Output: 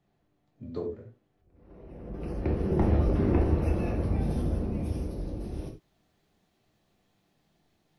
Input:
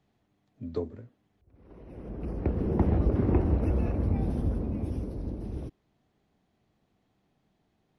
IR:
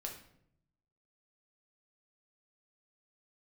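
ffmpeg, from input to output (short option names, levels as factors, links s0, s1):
-filter_complex "[0:a]asetnsamples=n=441:p=0,asendcmd='2.14 highshelf g 9.5',highshelf=f=2200:g=-3[s0];[1:a]atrim=start_sample=2205,afade=t=out:st=0.15:d=0.01,atrim=end_sample=7056[s1];[s0][s1]afir=irnorm=-1:irlink=0,volume=1.26"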